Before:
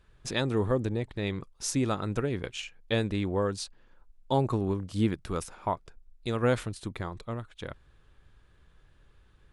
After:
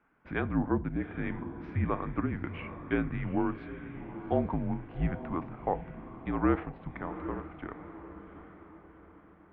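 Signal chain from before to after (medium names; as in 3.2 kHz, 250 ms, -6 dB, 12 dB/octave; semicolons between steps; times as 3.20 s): echo that smears into a reverb 785 ms, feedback 47%, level -11 dB; mistuned SSB -170 Hz 240–2400 Hz; FDN reverb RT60 0.43 s, high-frequency decay 0.85×, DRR 13.5 dB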